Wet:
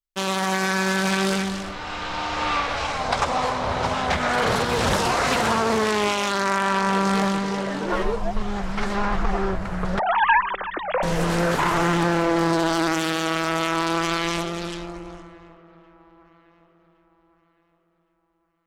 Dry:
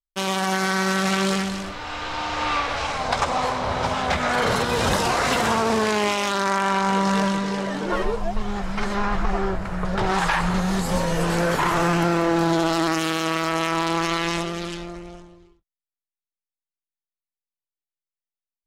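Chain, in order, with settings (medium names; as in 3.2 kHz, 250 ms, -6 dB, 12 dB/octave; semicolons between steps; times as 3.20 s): 9.99–11.03 s: formants replaced by sine waves; feedback echo behind a low-pass 1114 ms, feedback 35%, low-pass 1.7 kHz, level -22 dB; loudspeaker Doppler distortion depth 0.26 ms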